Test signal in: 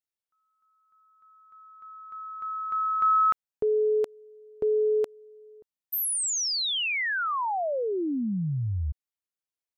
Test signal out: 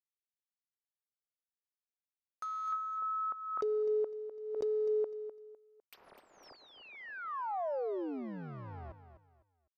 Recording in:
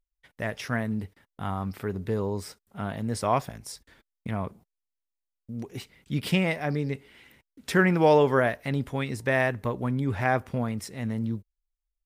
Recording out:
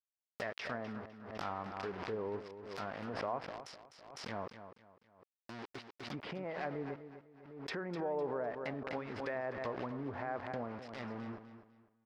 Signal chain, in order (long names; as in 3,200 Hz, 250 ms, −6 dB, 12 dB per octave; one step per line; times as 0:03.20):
bit reduction 6 bits
brickwall limiter −20 dBFS
parametric band 5,000 Hz +10 dB 0.5 octaves
treble cut that deepens with the level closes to 880 Hz, closed at −24 dBFS
bass and treble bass −14 dB, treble −11 dB
repeating echo 252 ms, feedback 29%, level −11 dB
pitch vibrato 0.72 Hz 5.9 cents
background raised ahead of every attack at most 52 dB per second
level −6.5 dB